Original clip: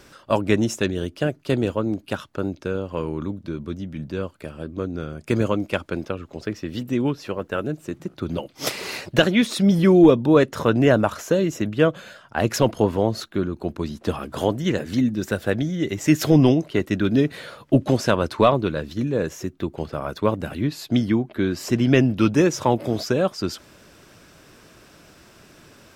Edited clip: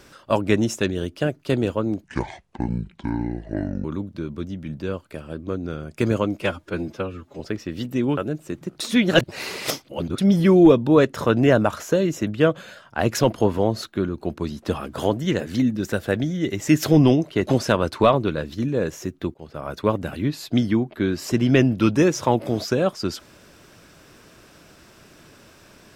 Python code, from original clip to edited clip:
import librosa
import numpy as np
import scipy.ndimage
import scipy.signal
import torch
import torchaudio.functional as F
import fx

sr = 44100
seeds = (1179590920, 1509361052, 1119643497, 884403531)

y = fx.edit(x, sr, fx.speed_span(start_s=2.04, length_s=1.1, speed=0.61),
    fx.stretch_span(start_s=5.71, length_s=0.66, factor=1.5),
    fx.cut(start_s=7.14, length_s=0.42),
    fx.reverse_span(start_s=8.19, length_s=1.38),
    fx.cut(start_s=16.85, length_s=1.0),
    fx.fade_in_from(start_s=19.73, length_s=0.44, floor_db=-20.5), tone=tone)